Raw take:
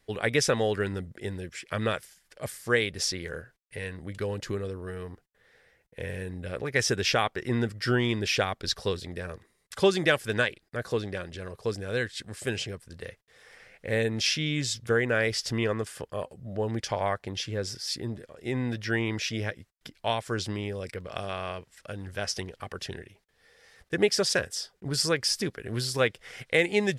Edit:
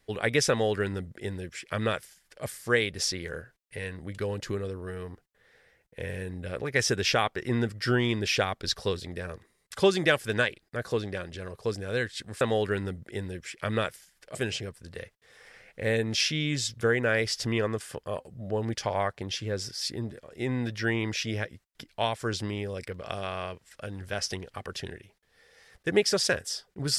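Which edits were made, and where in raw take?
0.50–2.44 s: copy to 12.41 s

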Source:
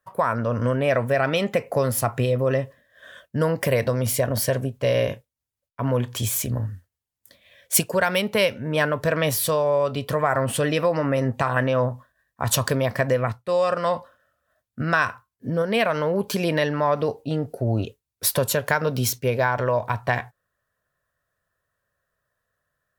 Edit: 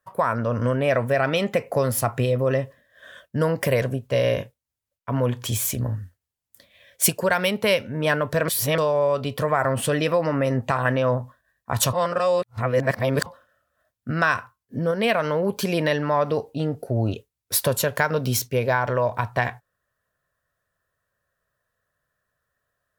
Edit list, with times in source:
3.82–4.53 s: delete
9.19–9.49 s: reverse
12.64–13.97 s: reverse

